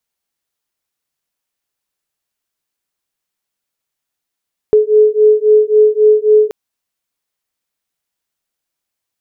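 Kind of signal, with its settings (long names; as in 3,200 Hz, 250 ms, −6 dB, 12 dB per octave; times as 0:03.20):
two tones that beat 425 Hz, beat 3.7 Hz, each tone −9.5 dBFS 1.78 s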